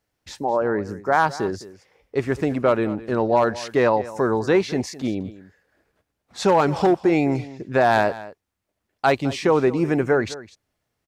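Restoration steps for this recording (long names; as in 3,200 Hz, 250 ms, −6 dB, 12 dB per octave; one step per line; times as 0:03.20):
echo removal 210 ms −17 dB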